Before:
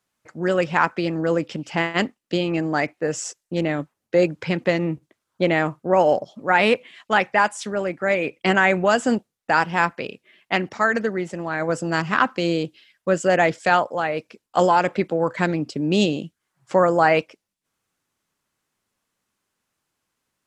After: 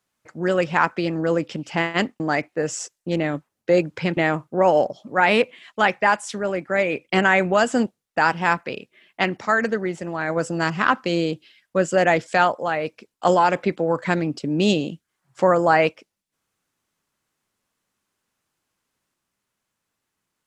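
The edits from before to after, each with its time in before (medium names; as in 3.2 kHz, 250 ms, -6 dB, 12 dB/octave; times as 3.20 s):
2.20–2.65 s: delete
4.62–5.49 s: delete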